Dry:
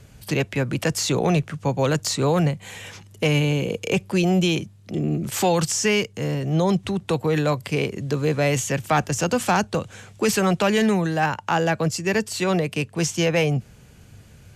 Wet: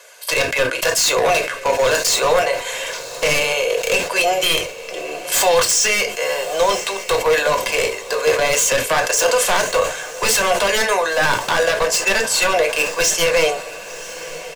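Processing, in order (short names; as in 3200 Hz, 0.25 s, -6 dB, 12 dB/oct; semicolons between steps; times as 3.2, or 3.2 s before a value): HPF 590 Hz 24 dB/oct; comb 1.9 ms, depth 64%; in parallel at +1 dB: negative-ratio compressor -25 dBFS, ratio -0.5; on the sum: wavefolder -14.5 dBFS; diffused feedback echo 1.034 s, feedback 52%, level -15 dB; on a send at -4 dB: reverb, pre-delay 4 ms; on the sum: sustainer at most 98 dB/s; gain +2.5 dB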